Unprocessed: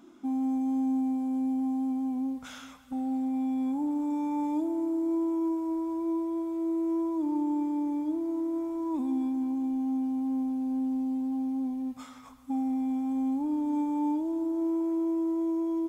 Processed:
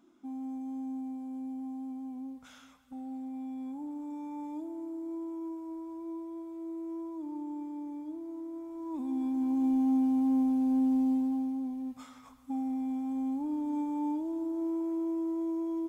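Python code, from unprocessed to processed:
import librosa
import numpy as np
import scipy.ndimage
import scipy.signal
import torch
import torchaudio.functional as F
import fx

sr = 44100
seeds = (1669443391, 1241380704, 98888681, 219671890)

y = fx.gain(x, sr, db=fx.line((8.65, -10.0), (9.68, 3.0), (11.11, 3.0), (11.61, -4.0)))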